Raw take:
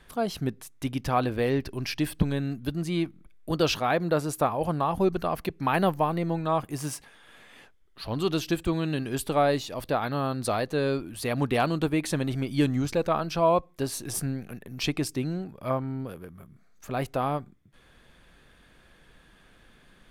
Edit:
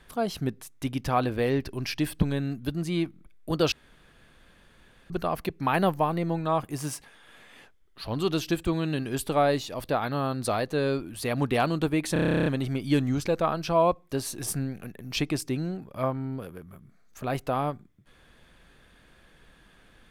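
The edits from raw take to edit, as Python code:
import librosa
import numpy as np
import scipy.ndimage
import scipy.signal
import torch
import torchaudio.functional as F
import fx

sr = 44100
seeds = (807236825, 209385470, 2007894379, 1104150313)

y = fx.edit(x, sr, fx.room_tone_fill(start_s=3.72, length_s=1.38),
    fx.stutter(start_s=12.13, slice_s=0.03, count=12), tone=tone)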